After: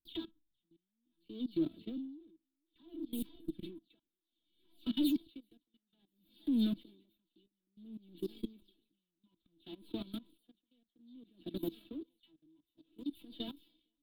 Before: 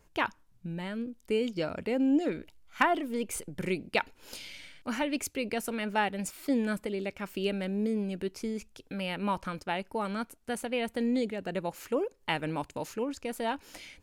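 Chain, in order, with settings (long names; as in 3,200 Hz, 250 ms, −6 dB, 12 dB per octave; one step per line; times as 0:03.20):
every frequency bin delayed by itself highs early, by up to 179 ms
dynamic equaliser 2,500 Hz, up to −8 dB, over −55 dBFS, Q 5.6
tuned comb filter 330 Hz, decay 0.15 s, harmonics all, mix 90%
feedback echo with a high-pass in the loop 464 ms, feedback 83%, high-pass 360 Hz, level −17 dB
output level in coarse steps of 23 dB
leveller curve on the samples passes 3
drawn EQ curve 100 Hz 0 dB, 310 Hz +8 dB, 570 Hz −16 dB, 2,000 Hz −21 dB, 3,600 Hz +9 dB, 6,000 Hz −28 dB, 14,000 Hz +1 dB
tremolo with a sine in dB 0.6 Hz, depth 38 dB
level +5.5 dB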